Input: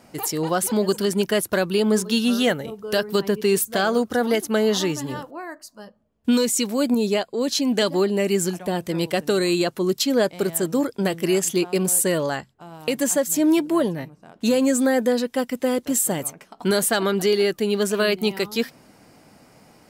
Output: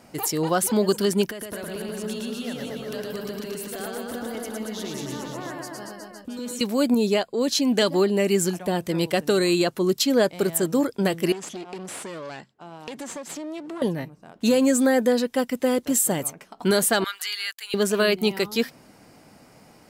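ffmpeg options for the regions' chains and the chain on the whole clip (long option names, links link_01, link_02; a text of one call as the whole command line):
ffmpeg -i in.wav -filter_complex "[0:a]asettb=1/sr,asplit=3[link_01][link_02][link_03];[link_01]atrim=end=1.304[link_04];[link_02]atrim=start=1.3:end=6.61,asetpts=PTS-STARTPTS,afade=type=in:duration=0.004:curve=qsin,afade=type=out:start_time=5.306:duration=0.004:curve=qsin,acompressor=threshold=-32dB:ratio=12:attack=3.2:release=140:knee=1:detection=peak,aecho=1:1:110|231|364.1|510.5|671.6:0.794|0.631|0.501|0.398|0.316,atrim=end_sample=234171[link_05];[link_03]atrim=start=6.606[link_06];[link_04][link_05]acrossfade=duration=0.004:curve1=hsin:curve2=qsin[link_07];[link_07][link_06]acrossfade=duration=0.004:curve1=qsin:curve2=hsin,asettb=1/sr,asplit=3[link_08][link_09][link_10];[link_08]atrim=end=11.324[link_11];[link_09]atrim=start=11.32:end=13.82,asetpts=PTS-STARTPTS,afade=type=in:duration=0.004:curve=qsin,afade=type=out:start_time=2.496:duration=0.004:curve=qsin,aeval=exprs='clip(val(0),-1,0.0211)':channel_layout=same,highpass=180,lowpass=6800,acompressor=threshold=-32dB:ratio=5:attack=3.2:release=140:knee=1:detection=peak[link_12];[link_10]atrim=start=13.816[link_13];[link_11][link_12]acrossfade=duration=0.004:curve1=hsin:curve2=qsin[link_14];[link_14][link_13]acrossfade=duration=0.004:curve1=qsin:curve2=hsin,asettb=1/sr,asplit=3[link_15][link_16][link_17];[link_15]atrim=end=17.044[link_18];[link_16]atrim=start=17.04:end=17.74,asetpts=PTS-STARTPTS,afade=type=in:duration=0.004:curve=qsin,afade=type=out:start_time=0.696:duration=0.004:curve=qsin,highpass=frequency=1300:width=0.5412,highpass=frequency=1300:width=1.3066,bandreject=frequency=5800:width=11,aeval=exprs='sgn(val(0))*max(abs(val(0))-0.00119,0)':channel_layout=same[link_19];[link_17]atrim=start=17.736[link_20];[link_18][link_19]acrossfade=duration=0.004:curve1=hsin:curve2=qsin[link_21];[link_21][link_20]acrossfade=duration=0.004:curve1=qsin:curve2=hsin" out.wav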